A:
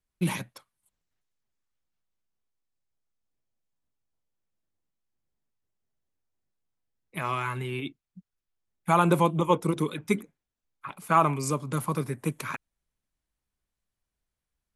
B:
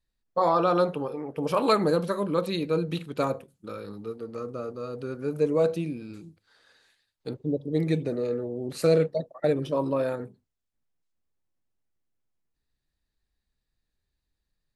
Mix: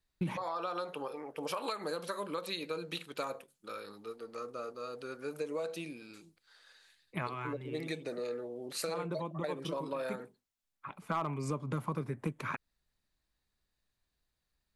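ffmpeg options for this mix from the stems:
ffmpeg -i stem1.wav -i stem2.wav -filter_complex "[0:a]aemphasis=mode=reproduction:type=75fm,volume=1dB[link_01];[1:a]highpass=frequency=1300:poles=1,acompressor=threshold=-31dB:ratio=6,volume=1.5dB,asplit=2[link_02][link_03];[link_03]apad=whole_len=650795[link_04];[link_01][link_04]sidechaincompress=threshold=-45dB:ratio=8:attack=12:release=1360[link_05];[link_05][link_02]amix=inputs=2:normalize=0,asoftclip=type=hard:threshold=-16dB,acompressor=threshold=-33dB:ratio=4" out.wav

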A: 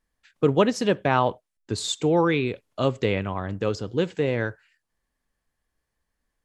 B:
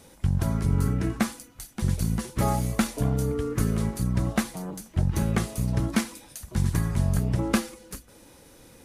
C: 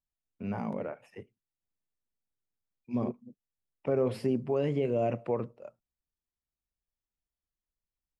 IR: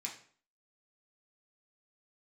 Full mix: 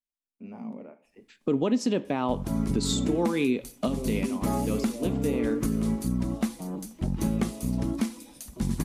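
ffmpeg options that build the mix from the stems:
-filter_complex "[0:a]adelay=1050,volume=3dB,asplit=2[link_01][link_02];[link_02]volume=-13dB[link_03];[1:a]adelay=2050,volume=-2dB[link_04];[2:a]volume=-10dB,asplit=3[link_05][link_06][link_07];[link_06]volume=-6dB[link_08];[link_07]apad=whole_len=330381[link_09];[link_01][link_09]sidechaincompress=threshold=-45dB:ratio=8:attack=7.4:release=929[link_10];[3:a]atrim=start_sample=2205[link_11];[link_03][link_08]amix=inputs=2:normalize=0[link_12];[link_12][link_11]afir=irnorm=-1:irlink=0[link_13];[link_10][link_04][link_05][link_13]amix=inputs=4:normalize=0,equalizer=frequency=100:width_type=o:width=0.67:gain=-10,equalizer=frequency=250:width_type=o:width=0.67:gain=10,equalizer=frequency=1600:width_type=o:width=0.67:gain=-6,alimiter=limit=-15.5dB:level=0:latency=1:release=274"

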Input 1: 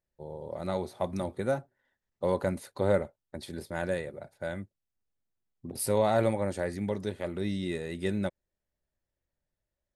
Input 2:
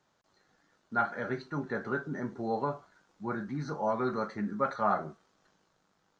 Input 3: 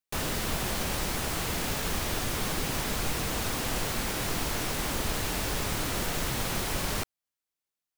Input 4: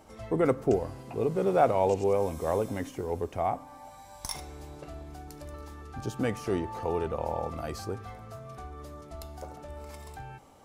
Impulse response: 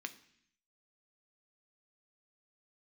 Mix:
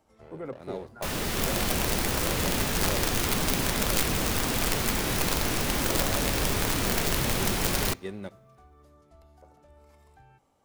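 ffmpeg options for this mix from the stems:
-filter_complex "[0:a]equalizer=frequency=430:width_type=o:width=0.33:gain=5.5,aeval=exprs='sgn(val(0))*max(abs(val(0))-0.00794,0)':channel_layout=same,volume=-9dB,asplit=2[link_01][link_02];[link_02]volume=-5.5dB[link_03];[1:a]acompressor=threshold=-33dB:ratio=6,volume=-14.5dB[link_04];[2:a]dynaudnorm=framelen=110:gausssize=9:maxgain=6dB,adelay=900,volume=-1.5dB,asplit=2[link_05][link_06];[link_06]volume=-9dB[link_07];[3:a]acrossover=split=2800[link_08][link_09];[link_09]acompressor=threshold=-55dB:ratio=4:attack=1:release=60[link_10];[link_08][link_10]amix=inputs=2:normalize=0,volume=-13dB[link_11];[4:a]atrim=start_sample=2205[link_12];[link_03][link_07]amix=inputs=2:normalize=0[link_13];[link_13][link_12]afir=irnorm=-1:irlink=0[link_14];[link_01][link_04][link_05][link_11][link_14]amix=inputs=5:normalize=0,acrossover=split=460[link_15][link_16];[link_16]acompressor=threshold=-29dB:ratio=3[link_17];[link_15][link_17]amix=inputs=2:normalize=0,aeval=exprs='(mod(7.94*val(0)+1,2)-1)/7.94':channel_layout=same"

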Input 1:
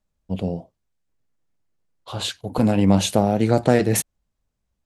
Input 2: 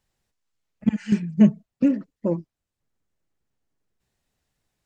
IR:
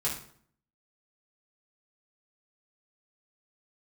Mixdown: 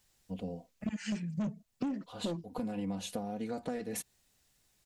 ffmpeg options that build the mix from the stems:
-filter_complex "[0:a]aecho=1:1:4.1:0.79,volume=-15dB[link_01];[1:a]highshelf=frequency=2900:gain=11,asoftclip=type=tanh:threshold=-18.5dB,volume=0.5dB[link_02];[link_01][link_02]amix=inputs=2:normalize=0,acompressor=threshold=-34dB:ratio=5"

